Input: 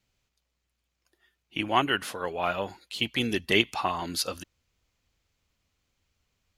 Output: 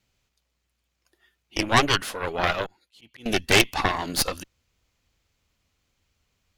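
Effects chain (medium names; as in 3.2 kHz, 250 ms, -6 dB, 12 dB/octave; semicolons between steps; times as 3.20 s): 2.66–3.26 s: slow attack 632 ms; Chebyshev shaper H 5 -20 dB, 8 -8 dB, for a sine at -4.5 dBFS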